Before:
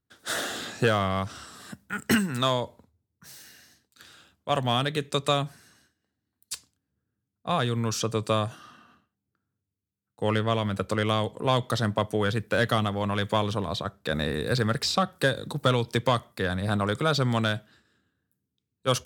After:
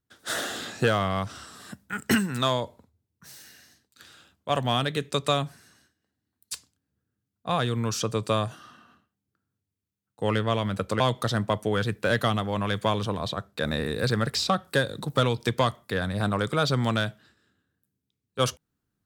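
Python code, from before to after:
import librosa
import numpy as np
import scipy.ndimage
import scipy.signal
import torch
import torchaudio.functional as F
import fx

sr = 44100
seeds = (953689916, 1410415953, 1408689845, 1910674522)

y = fx.edit(x, sr, fx.cut(start_s=11.0, length_s=0.48), tone=tone)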